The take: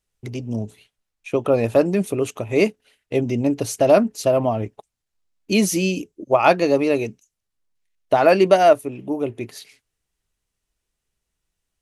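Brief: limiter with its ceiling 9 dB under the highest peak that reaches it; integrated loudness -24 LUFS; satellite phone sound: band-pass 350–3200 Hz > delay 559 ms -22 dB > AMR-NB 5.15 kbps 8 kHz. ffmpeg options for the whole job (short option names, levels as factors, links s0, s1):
-af "alimiter=limit=0.299:level=0:latency=1,highpass=350,lowpass=3200,aecho=1:1:559:0.0794,volume=1.19" -ar 8000 -c:a libopencore_amrnb -b:a 5150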